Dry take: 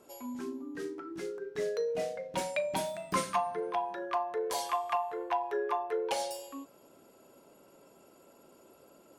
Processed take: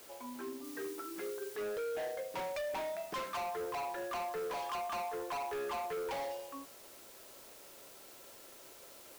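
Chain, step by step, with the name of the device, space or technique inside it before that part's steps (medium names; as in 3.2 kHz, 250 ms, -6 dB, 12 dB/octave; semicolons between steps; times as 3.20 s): aircraft radio (band-pass 390–2400 Hz; hard clipper -37 dBFS, distortion -6 dB; white noise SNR 15 dB); 0.64–1.56 s: treble shelf 4.8 kHz +5 dB; trim +1 dB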